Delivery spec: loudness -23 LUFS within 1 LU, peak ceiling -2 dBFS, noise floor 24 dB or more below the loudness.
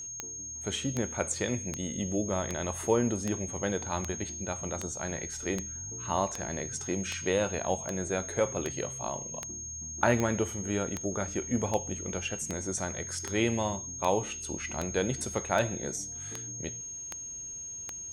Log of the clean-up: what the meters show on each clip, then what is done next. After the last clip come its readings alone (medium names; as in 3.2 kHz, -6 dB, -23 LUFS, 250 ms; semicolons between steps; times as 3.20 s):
clicks found 24; steady tone 6.5 kHz; tone level -38 dBFS; loudness -32.0 LUFS; peak level -10.0 dBFS; loudness target -23.0 LUFS
-> de-click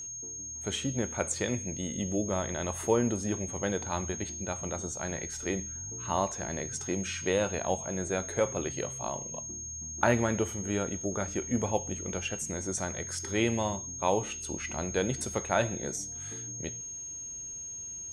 clicks found 0; steady tone 6.5 kHz; tone level -38 dBFS
-> band-stop 6.5 kHz, Q 30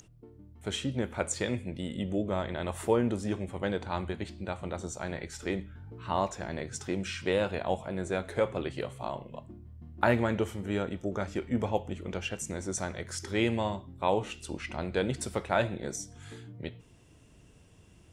steady tone not found; loudness -33.0 LUFS; peak level -10.0 dBFS; loudness target -23.0 LUFS
-> trim +10 dB; peak limiter -2 dBFS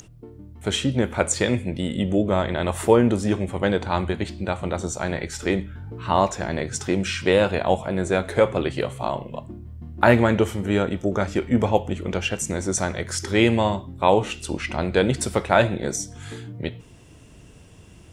loudness -23.0 LUFS; peak level -2.0 dBFS; noise floor -48 dBFS